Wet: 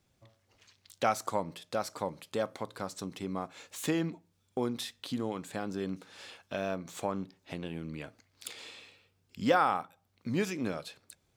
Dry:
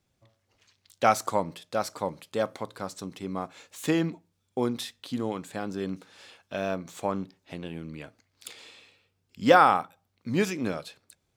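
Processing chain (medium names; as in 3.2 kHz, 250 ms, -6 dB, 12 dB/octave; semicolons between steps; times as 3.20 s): compression 1.5:1, threshold -42 dBFS, peak gain reduction 10.5 dB; trim +2 dB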